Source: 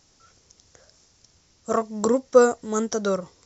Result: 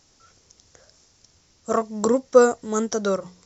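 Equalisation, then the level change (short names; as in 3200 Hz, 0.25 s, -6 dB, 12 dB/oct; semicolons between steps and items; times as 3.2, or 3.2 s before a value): notches 60/120/180 Hz; +1.0 dB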